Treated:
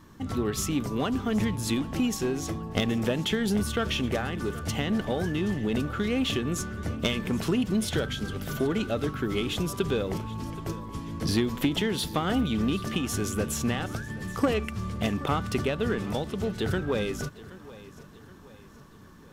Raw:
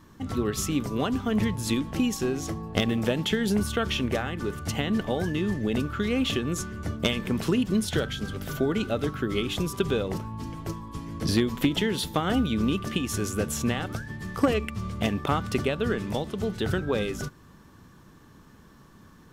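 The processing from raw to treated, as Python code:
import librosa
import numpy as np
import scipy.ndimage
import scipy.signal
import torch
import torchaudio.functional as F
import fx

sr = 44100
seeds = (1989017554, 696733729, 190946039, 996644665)

p1 = 10.0 ** (-26.5 / 20.0) * np.tanh(x / 10.0 ** (-26.5 / 20.0))
p2 = x + (p1 * librosa.db_to_amplitude(-3.0))
p3 = fx.echo_feedback(p2, sr, ms=775, feedback_pct=46, wet_db=-18.5)
y = p3 * librosa.db_to_amplitude(-4.0)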